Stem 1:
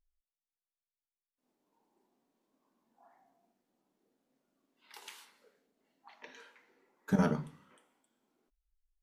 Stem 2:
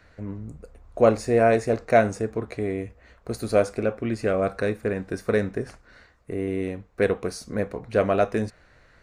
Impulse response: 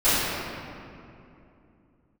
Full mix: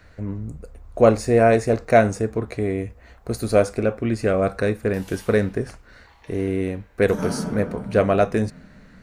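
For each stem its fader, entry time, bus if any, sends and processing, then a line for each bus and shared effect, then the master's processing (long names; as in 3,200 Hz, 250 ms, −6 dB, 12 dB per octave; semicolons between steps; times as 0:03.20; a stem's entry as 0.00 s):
−4.0 dB, 0.00 s, send −14 dB, high-shelf EQ 4,700 Hz +7.5 dB
+2.5 dB, 0.00 s, no send, low-shelf EQ 170 Hz +5 dB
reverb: on, RT60 2.7 s, pre-delay 3 ms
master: high-shelf EQ 7,700 Hz +4.5 dB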